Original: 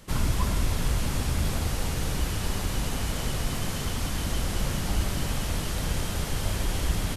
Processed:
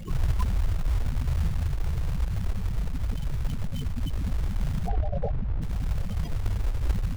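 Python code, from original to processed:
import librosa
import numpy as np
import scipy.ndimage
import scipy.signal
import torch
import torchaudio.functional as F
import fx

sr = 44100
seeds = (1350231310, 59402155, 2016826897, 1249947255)

y = x + 0.5 * 10.0 ** (-30.0 / 20.0) * np.sign(x)
y = fx.spec_box(y, sr, start_s=4.87, length_s=0.44, low_hz=410.0, high_hz=850.0, gain_db=11)
y = fx.high_shelf(y, sr, hz=2100.0, db=5.0)
y = fx.spec_gate(y, sr, threshold_db=-10, keep='strong')
y = fx.echo_feedback(y, sr, ms=866, feedback_pct=32, wet_db=-21.0)
y = fx.quant_float(y, sr, bits=2)
y = fx.spacing_loss(y, sr, db_at_10k=35, at=(4.88, 5.62))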